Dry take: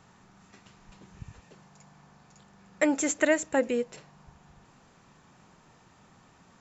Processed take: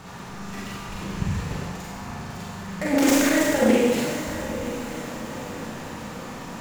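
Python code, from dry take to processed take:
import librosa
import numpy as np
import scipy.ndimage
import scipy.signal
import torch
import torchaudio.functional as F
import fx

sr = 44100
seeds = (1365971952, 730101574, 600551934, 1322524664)

y = fx.dead_time(x, sr, dead_ms=0.061)
y = fx.over_compress(y, sr, threshold_db=-32.0, ratio=-1.0)
y = fx.echo_diffused(y, sr, ms=906, feedback_pct=51, wet_db=-11.5)
y = fx.rev_schroeder(y, sr, rt60_s=1.3, comb_ms=32, drr_db=-6.0)
y = fx.doppler_dist(y, sr, depth_ms=0.21)
y = F.gain(torch.from_numpy(y), 8.0).numpy()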